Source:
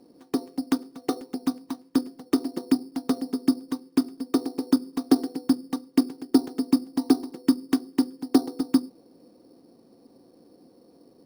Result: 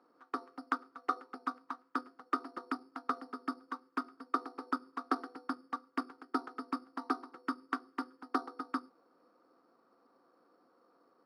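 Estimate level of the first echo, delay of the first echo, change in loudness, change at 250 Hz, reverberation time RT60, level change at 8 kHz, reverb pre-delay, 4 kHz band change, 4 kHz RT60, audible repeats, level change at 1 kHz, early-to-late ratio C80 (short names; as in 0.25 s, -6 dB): none, none, -13.5 dB, -19.0 dB, none, under -20 dB, none, -16.0 dB, none, none, +2.0 dB, none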